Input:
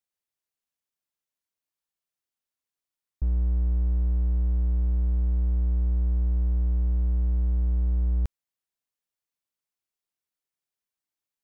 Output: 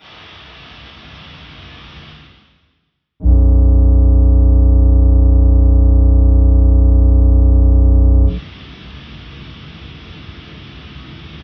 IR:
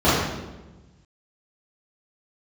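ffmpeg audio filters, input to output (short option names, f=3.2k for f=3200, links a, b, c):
-filter_complex "[0:a]asubboost=boost=8.5:cutoff=220,areverse,acompressor=mode=upward:threshold=-15dB:ratio=2.5,areverse,alimiter=limit=-11dB:level=0:latency=1:release=20,acontrast=37,aresample=8000,asoftclip=type=tanh:threshold=-22dB,aresample=44100,crystalizer=i=8:c=0,asplit=2[a][b];[b]asetrate=66075,aresample=44100,atempo=0.66742,volume=-10dB[c];[a][c]amix=inputs=2:normalize=0[d];[1:a]atrim=start_sample=2205,atrim=end_sample=6174[e];[d][e]afir=irnorm=-1:irlink=0,volume=-16.5dB"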